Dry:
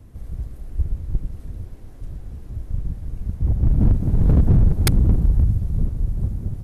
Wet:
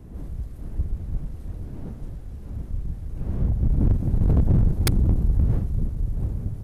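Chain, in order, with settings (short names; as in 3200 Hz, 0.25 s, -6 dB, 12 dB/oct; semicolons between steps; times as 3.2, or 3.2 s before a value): one diode to ground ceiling -15 dBFS; wind noise 160 Hz -36 dBFS; gain -1.5 dB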